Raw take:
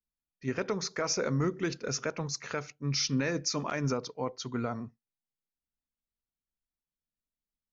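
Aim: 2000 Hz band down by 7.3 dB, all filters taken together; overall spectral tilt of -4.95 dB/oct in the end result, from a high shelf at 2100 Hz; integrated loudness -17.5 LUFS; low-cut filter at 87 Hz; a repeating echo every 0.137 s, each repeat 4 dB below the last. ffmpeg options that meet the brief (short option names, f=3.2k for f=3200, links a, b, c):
-af "highpass=87,equalizer=f=2k:t=o:g=-8,highshelf=f=2.1k:g=-3.5,aecho=1:1:137|274|411|548|685|822|959|1096|1233:0.631|0.398|0.25|0.158|0.0994|0.0626|0.0394|0.0249|0.0157,volume=15dB"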